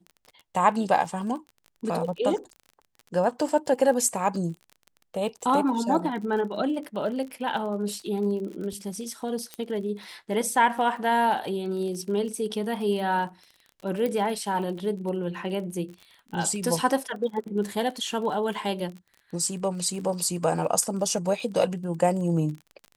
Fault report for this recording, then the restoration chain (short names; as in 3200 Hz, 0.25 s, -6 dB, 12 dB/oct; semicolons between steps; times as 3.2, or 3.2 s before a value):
crackle 34/s -35 dBFS
9.54 pop -19 dBFS
14.06 pop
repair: de-click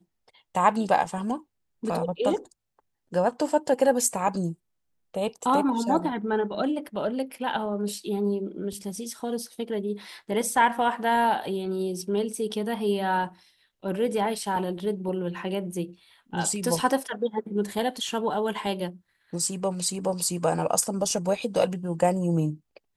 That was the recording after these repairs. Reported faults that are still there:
14.06 pop